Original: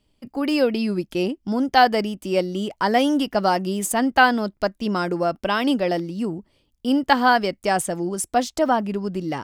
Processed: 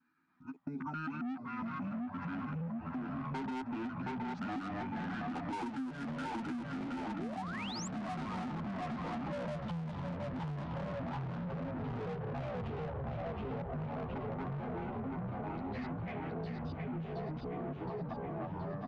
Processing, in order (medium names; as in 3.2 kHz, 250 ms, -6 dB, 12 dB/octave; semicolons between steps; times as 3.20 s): time reversed locally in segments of 69 ms; Doppler pass-by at 2.85 s, 11 m/s, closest 2.3 m; vowel filter e; treble shelf 4.7 kHz +9 dB; ever faster or slower copies 136 ms, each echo -4 st, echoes 3; comb 6 ms, depth 91%; frequency-shifting echo 360 ms, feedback 59%, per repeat -32 Hz, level -5 dB; overdrive pedal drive 23 dB, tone 7.1 kHz, clips at -29 dBFS; speed mistake 15 ips tape played at 7.5 ips; painted sound rise, 7.14–7.88 s, 260–7900 Hz -36 dBFS; compression 16:1, threshold -50 dBFS, peak gain reduction 29.5 dB; trim +13 dB